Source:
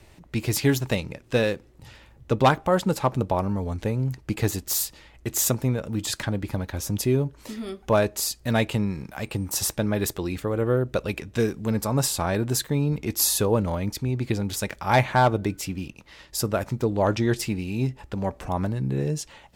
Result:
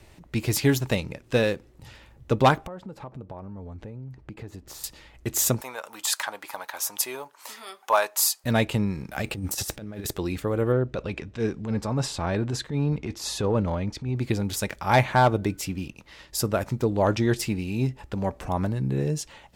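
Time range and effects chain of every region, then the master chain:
0:02.67–0:04.84: low-pass filter 1,300 Hz 6 dB per octave + downward compressor 4 to 1, threshold −38 dBFS
0:05.61–0:08.44: high-pass with resonance 920 Hz, resonance Q 2.1 + high-shelf EQ 8,300 Hz +9.5 dB
0:09.11–0:10.11: parametric band 1,000 Hz −8.5 dB 0.24 octaves + compressor whose output falls as the input rises −30 dBFS, ratio −0.5 + slack as between gear wheels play −53 dBFS
0:10.72–0:14.16: transient designer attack −10 dB, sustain 0 dB + high-frequency loss of the air 96 metres
whole clip: no processing

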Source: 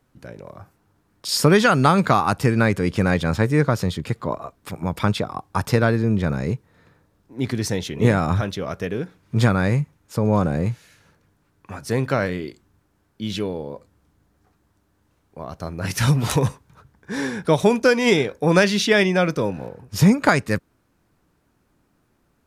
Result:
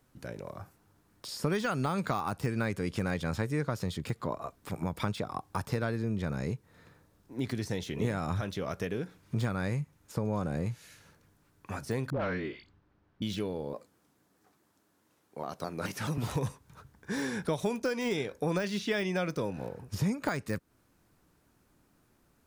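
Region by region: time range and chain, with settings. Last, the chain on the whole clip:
0:12.10–0:13.22: all-pass dispersion highs, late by 122 ms, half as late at 850 Hz + hard clipping −18 dBFS + high-frequency loss of the air 250 metres
0:13.73–0:16.18: high-pass filter 200 Hz + pitch modulation by a square or saw wave saw down 4.7 Hz, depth 160 cents
whole clip: downward compressor 3 to 1, threshold −28 dBFS; high-shelf EQ 4,800 Hz +6 dB; de-essing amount 90%; level −3 dB

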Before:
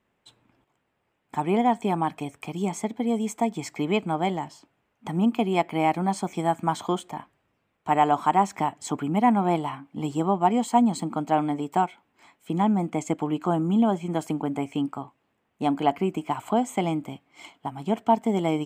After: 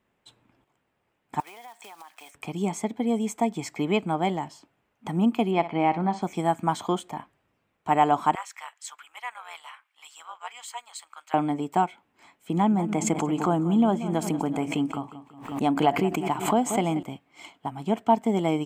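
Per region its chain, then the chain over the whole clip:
0:01.40–0:02.35: one scale factor per block 5 bits + high-pass filter 1,100 Hz + downward compressor 12 to 1, threshold −41 dBFS
0:05.51–0:06.22: high-frequency loss of the air 160 metres + flutter between parallel walls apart 10.2 metres, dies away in 0.26 s
0:08.35–0:11.34: high-pass filter 1,300 Hz 24 dB per octave + amplitude modulation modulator 250 Hz, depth 45%
0:12.52–0:17.03: repeating echo 183 ms, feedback 42%, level −14 dB + background raised ahead of every attack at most 87 dB per second
whole clip: no processing

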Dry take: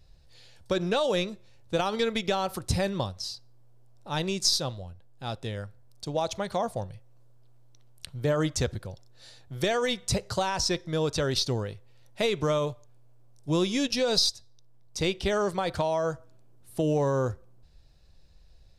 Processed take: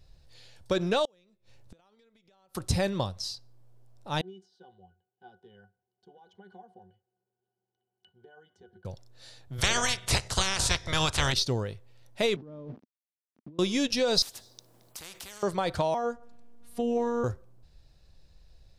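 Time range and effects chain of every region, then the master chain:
0:01.05–0:02.55: downward compressor 12 to 1, threshold −35 dBFS + gate with flip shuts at −38 dBFS, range −25 dB
0:04.21–0:08.85: downward compressor 12 to 1, threshold −32 dBFS + high-pass filter 330 Hz + resonances in every octave F#, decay 0.12 s
0:09.58–0:11.32: ceiling on every frequency bin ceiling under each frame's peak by 28 dB + low-pass filter 11,000 Hz 24 dB per octave + low shelf with overshoot 160 Hz +10.5 dB, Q 1.5
0:12.36–0:13.59: linear delta modulator 32 kbit/s, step −35 dBFS + resonant band-pass 240 Hz, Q 2.7 + compressor whose output falls as the input rises −44 dBFS
0:14.22–0:15.43: high-shelf EQ 7,100 Hz +7.5 dB + downward compressor 3 to 1, threshold −33 dBFS + every bin compressed towards the loudest bin 4 to 1
0:15.94–0:17.24: high-shelf EQ 4,500 Hz −8 dB + upward compression, threshold −38 dBFS + phases set to zero 237 Hz
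whole clip: no processing

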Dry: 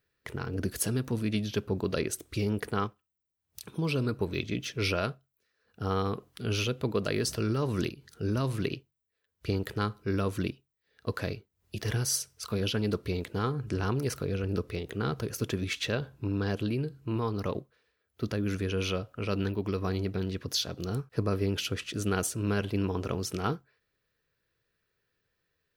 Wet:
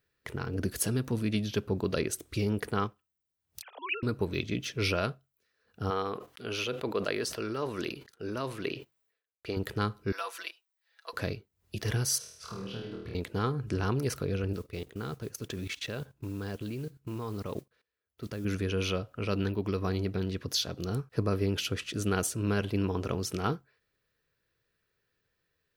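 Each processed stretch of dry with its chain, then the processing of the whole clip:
0:03.62–0:04.03: three sine waves on the formant tracks + high-pass filter 620 Hz 24 dB per octave + upward compression, threshold −45 dBFS
0:05.90–0:09.57: noise gate −56 dBFS, range −28 dB + bass and treble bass −14 dB, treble −5 dB + level that may fall only so fast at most 110 dB per second
0:10.12–0:11.13: high-pass filter 730 Hz 24 dB per octave + comb filter 6 ms, depth 81%
0:12.18–0:13.15: low-pass filter 1,800 Hz 6 dB per octave + downward compressor, threshold −39 dBFS + flutter between parallel walls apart 4.4 metres, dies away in 0.76 s
0:14.53–0:18.45: output level in coarse steps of 18 dB + noise that follows the level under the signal 24 dB
whole clip: no processing

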